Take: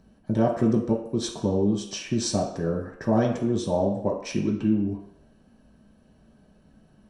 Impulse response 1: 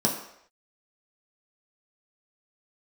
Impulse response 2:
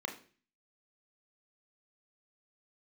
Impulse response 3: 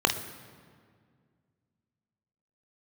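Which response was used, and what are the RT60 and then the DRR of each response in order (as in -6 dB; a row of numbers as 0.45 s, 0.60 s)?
1; 0.70 s, 0.40 s, 2.0 s; -2.5 dB, 3.0 dB, 4.5 dB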